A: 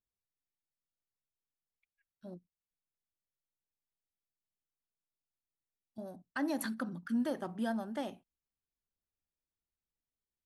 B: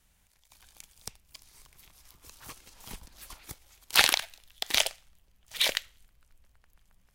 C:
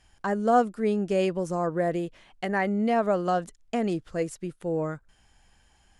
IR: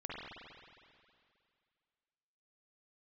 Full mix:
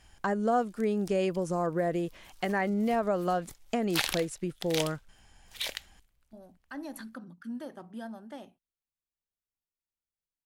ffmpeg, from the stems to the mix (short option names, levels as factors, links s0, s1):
-filter_complex "[0:a]adelay=350,volume=0.501[s0];[1:a]volume=0.376[s1];[2:a]acompressor=threshold=0.0251:ratio=2,volume=1.33[s2];[s0][s1][s2]amix=inputs=3:normalize=0"